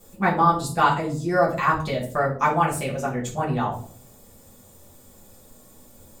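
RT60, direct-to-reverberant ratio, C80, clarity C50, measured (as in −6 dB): 0.55 s, −7.5 dB, 12.5 dB, 8.0 dB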